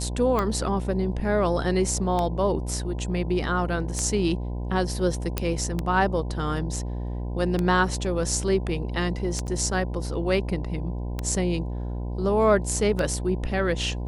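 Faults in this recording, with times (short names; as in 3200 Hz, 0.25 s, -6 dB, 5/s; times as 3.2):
buzz 60 Hz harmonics 17 -30 dBFS
tick 33 1/3 rpm -13 dBFS
5.38 pop -9 dBFS
9.47–9.48 gap 8.6 ms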